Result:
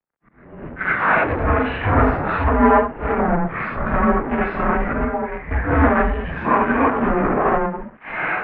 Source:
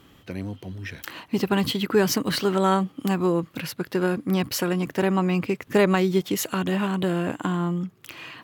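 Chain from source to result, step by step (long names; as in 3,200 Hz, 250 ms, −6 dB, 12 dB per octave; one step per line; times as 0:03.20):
random phases in long frames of 200 ms
camcorder AGC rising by 10 dB per second
0:04.93–0:05.51: noise gate −19 dBFS, range −10 dB
0:06.04–0:07.09: comb filter 1.5 ms, depth 48%
leveller curve on the samples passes 5
volume swells 355 ms
single-sideband voice off tune −330 Hz 470–2,200 Hz
0:01.44–0:02.17: flutter between parallel walls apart 6.6 metres, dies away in 0.33 s
multiband upward and downward expander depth 70%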